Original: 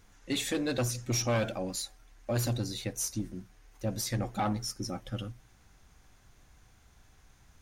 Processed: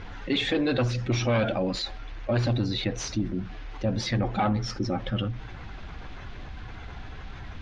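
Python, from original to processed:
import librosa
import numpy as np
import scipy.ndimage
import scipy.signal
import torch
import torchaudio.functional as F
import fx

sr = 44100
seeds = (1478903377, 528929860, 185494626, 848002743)

y = fx.spec_quant(x, sr, step_db=15)
y = scipy.signal.sosfilt(scipy.signal.butter(4, 3800.0, 'lowpass', fs=sr, output='sos'), y)
y = fx.env_flatten(y, sr, amount_pct=50)
y = y * librosa.db_to_amplitude(4.5)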